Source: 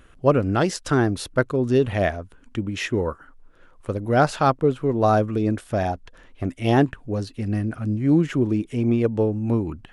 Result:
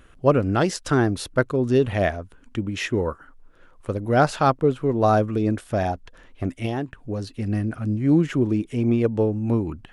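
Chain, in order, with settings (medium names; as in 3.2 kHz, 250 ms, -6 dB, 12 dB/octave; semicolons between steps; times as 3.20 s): 6.65–7.24 s: compression 5:1, threshold -24 dBFS, peak gain reduction 11 dB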